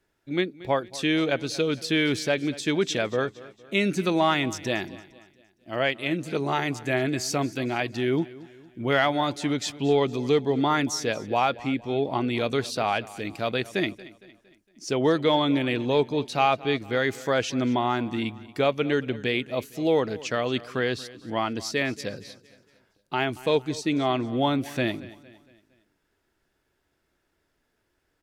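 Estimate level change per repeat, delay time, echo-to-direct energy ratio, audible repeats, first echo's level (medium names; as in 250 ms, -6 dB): -7.0 dB, 230 ms, -18.0 dB, 3, -19.0 dB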